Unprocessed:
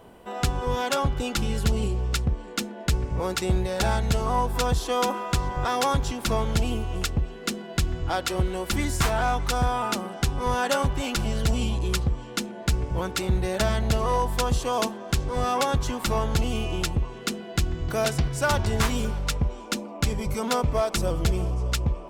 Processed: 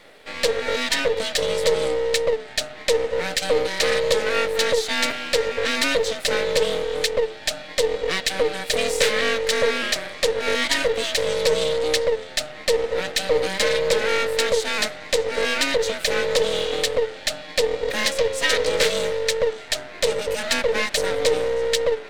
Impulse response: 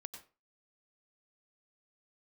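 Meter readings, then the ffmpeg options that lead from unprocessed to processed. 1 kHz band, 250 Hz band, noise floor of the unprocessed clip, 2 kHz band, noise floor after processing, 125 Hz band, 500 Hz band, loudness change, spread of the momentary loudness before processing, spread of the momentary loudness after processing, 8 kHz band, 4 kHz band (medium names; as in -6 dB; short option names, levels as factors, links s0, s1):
-3.0 dB, -5.0 dB, -39 dBFS, +8.5 dB, -39 dBFS, -15.5 dB, +9.5 dB, +4.5 dB, 5 LU, 4 LU, +5.5 dB, +9.0 dB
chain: -af "afreqshift=400,aeval=exprs='max(val(0),0)':c=same,equalizer=f=250:t=o:w=1:g=5,equalizer=f=500:t=o:w=1:g=9,equalizer=f=1000:t=o:w=1:g=-8,equalizer=f=2000:t=o:w=1:g=9,equalizer=f=4000:t=o:w=1:g=11,equalizer=f=8000:t=o:w=1:g=6"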